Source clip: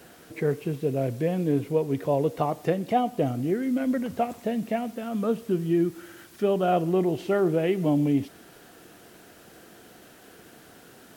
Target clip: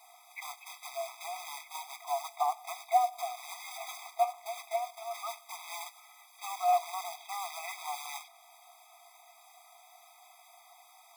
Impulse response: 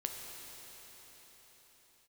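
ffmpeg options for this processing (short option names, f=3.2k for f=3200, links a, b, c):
-filter_complex "[0:a]lowshelf=f=420:g=8.5,acrossover=split=3600[a][b];[a]acrusher=bits=4:mode=log:mix=0:aa=0.000001[c];[b]alimiter=level_in=23dB:limit=-24dB:level=0:latency=1:release=240,volume=-23dB[d];[c][d]amix=inputs=2:normalize=0,acontrast=53,afftfilt=real='re*eq(mod(floor(b*sr/1024/650),2),1)':imag='im*eq(mod(floor(b*sr/1024/650),2),1)':win_size=1024:overlap=0.75,volume=-8dB"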